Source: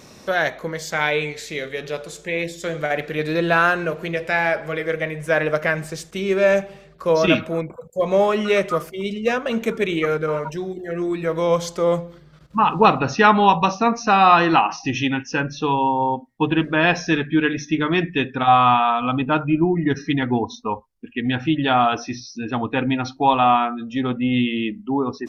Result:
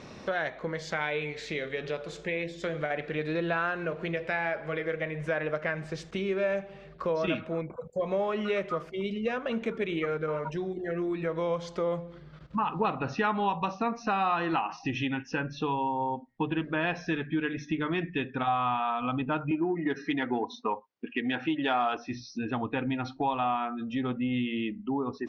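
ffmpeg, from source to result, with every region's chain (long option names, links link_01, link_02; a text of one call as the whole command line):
ffmpeg -i in.wav -filter_complex "[0:a]asettb=1/sr,asplit=3[link_01][link_02][link_03];[link_01]atrim=end=19.514[link_04];[link_02]atrim=start=19.51:end=21.97,asetpts=PTS-STARTPTS,afade=type=in:duration=0.004:curve=qsin,afade=type=out:start_time=2.456:duration=0.004:curve=qsin,acontrast=33,highpass=290,lowpass=7300[link_05];[link_03]atrim=start=21.966[link_06];[link_04][link_05]acrossfade=duration=0.004:curve1=hsin:curve2=qsin[link_07];[link_07][link_06]acrossfade=duration=0.004:curve1=qsin:curve2=hsin,lowpass=3600,acompressor=threshold=-32dB:ratio=2.5" out.wav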